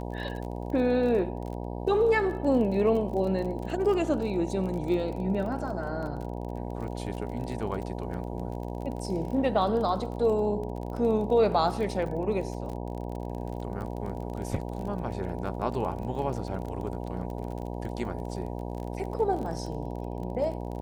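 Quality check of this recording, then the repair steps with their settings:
buzz 60 Hz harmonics 16 -35 dBFS
crackle 29/s -35 dBFS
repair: de-click; de-hum 60 Hz, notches 16

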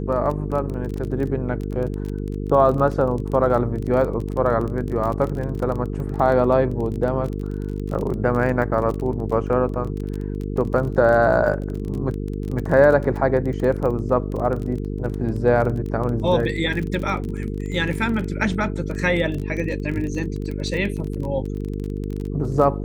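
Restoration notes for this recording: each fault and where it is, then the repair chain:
buzz 50 Hz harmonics 9 -27 dBFS
crackle 25/s -27 dBFS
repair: de-click; de-hum 50 Hz, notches 9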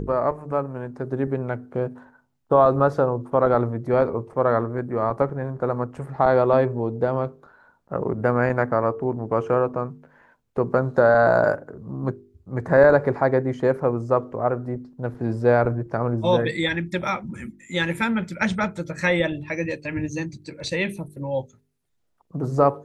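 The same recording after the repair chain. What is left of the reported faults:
none

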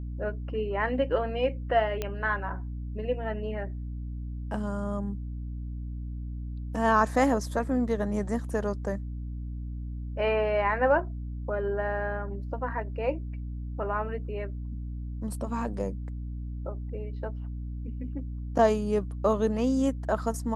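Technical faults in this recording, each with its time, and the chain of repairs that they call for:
hum 60 Hz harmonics 5 -35 dBFS
2.02 pop -16 dBFS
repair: de-click; de-hum 60 Hz, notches 5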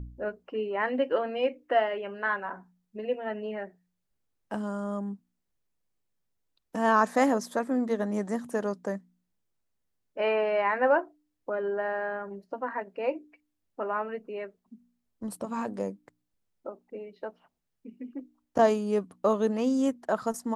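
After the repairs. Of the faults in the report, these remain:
none

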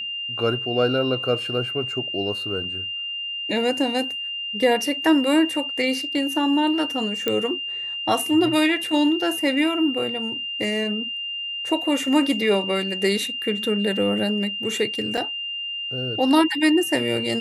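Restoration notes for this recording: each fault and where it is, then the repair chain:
tone 2800 Hz -27 dBFS
7.28 pop -9 dBFS
15.17–15.18 gap 6.1 ms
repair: de-click; notch 2800 Hz, Q 30; interpolate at 15.17, 6.1 ms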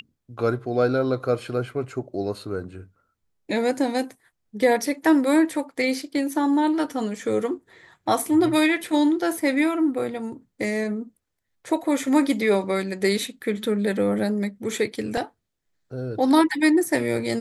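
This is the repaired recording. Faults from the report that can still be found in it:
none

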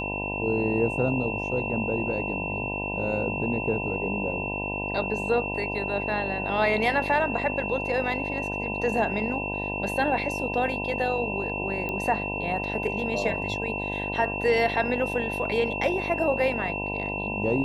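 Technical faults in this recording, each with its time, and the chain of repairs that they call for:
buzz 50 Hz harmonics 20 -33 dBFS
tone 2700 Hz -31 dBFS
11.89 pop -18 dBFS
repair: de-click; de-hum 50 Hz, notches 20; notch 2700 Hz, Q 30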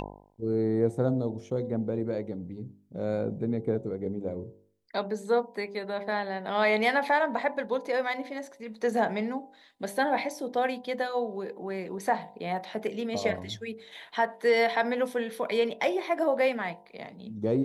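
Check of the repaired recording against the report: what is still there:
none

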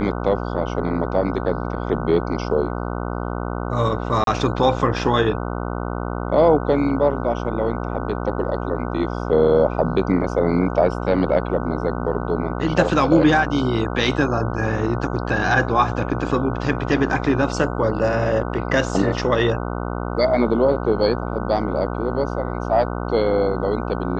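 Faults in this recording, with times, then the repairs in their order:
buzz 60 Hz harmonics 25 -26 dBFS
4.24–4.27 gap 32 ms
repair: de-hum 60 Hz, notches 25; interpolate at 4.24, 32 ms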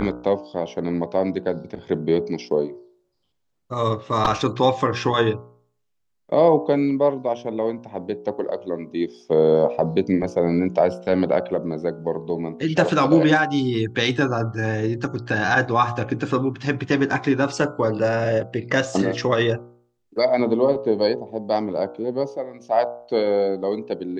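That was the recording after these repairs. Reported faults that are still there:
none

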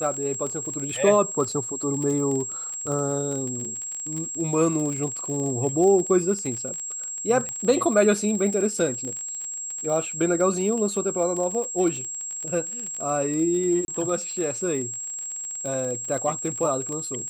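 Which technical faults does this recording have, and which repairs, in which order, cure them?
crackle 33/s -29 dBFS
tone 7600 Hz -30 dBFS
7.49 pop -18 dBFS
13.85–13.88 gap 31 ms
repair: de-click; notch 7600 Hz, Q 30; interpolate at 13.85, 31 ms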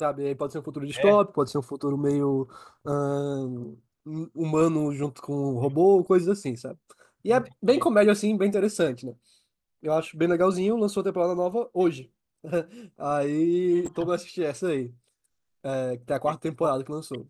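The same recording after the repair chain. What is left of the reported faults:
none

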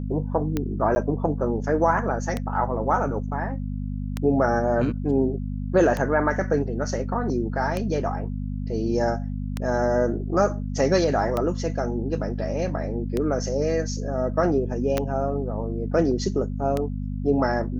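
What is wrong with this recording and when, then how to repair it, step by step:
hum 50 Hz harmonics 5 -29 dBFS
tick 33 1/3 rpm -12 dBFS
0.95–0.96 gap 10 ms
14.98 pop -9 dBFS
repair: de-click; de-hum 50 Hz, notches 5; interpolate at 0.95, 10 ms

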